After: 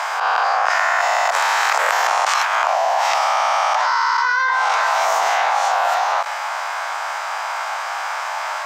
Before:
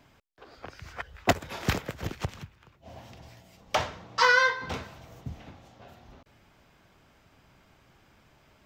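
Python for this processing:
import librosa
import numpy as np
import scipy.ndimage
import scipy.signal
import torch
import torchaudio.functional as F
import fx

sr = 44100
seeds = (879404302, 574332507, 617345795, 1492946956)

p1 = fx.spec_swells(x, sr, rise_s=1.07)
p2 = scipy.signal.sosfilt(scipy.signal.butter(6, 770.0, 'highpass', fs=sr, output='sos'), p1)
p3 = fx.peak_eq(p2, sr, hz=3100.0, db=-13.0, octaves=1.7)
p4 = fx.rider(p3, sr, range_db=4, speed_s=0.5)
p5 = p3 + (p4 * librosa.db_to_amplitude(-3.0))
p6 = fx.air_absorb(p5, sr, metres=69.0)
y = fx.env_flatten(p6, sr, amount_pct=100)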